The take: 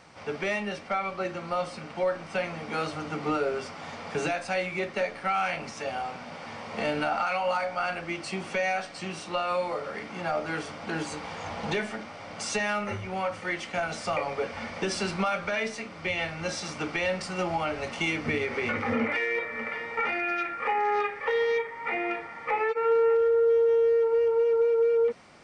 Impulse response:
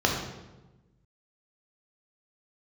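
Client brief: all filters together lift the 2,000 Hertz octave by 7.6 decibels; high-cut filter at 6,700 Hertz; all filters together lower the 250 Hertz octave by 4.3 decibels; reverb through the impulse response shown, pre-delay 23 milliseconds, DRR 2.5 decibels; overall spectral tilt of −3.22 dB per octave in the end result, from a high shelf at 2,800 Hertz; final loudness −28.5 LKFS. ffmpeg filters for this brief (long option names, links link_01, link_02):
-filter_complex "[0:a]lowpass=6700,equalizer=frequency=250:width_type=o:gain=-6.5,equalizer=frequency=2000:width_type=o:gain=6.5,highshelf=frequency=2800:gain=6.5,asplit=2[link_01][link_02];[1:a]atrim=start_sample=2205,adelay=23[link_03];[link_02][link_03]afir=irnorm=-1:irlink=0,volume=-17dB[link_04];[link_01][link_04]amix=inputs=2:normalize=0,volume=-4.5dB"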